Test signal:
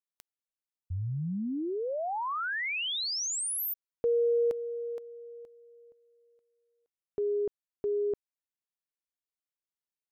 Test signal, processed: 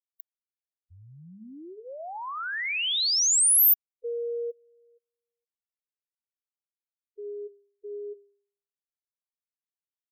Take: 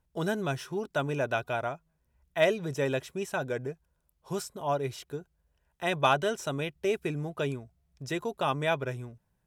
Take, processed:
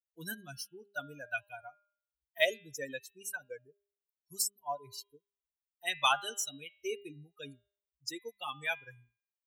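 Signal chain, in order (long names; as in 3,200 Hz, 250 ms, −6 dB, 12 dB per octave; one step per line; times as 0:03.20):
spectral dynamics exaggerated over time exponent 3
spectral tilt +4.5 dB per octave
hum removal 201.9 Hz, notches 19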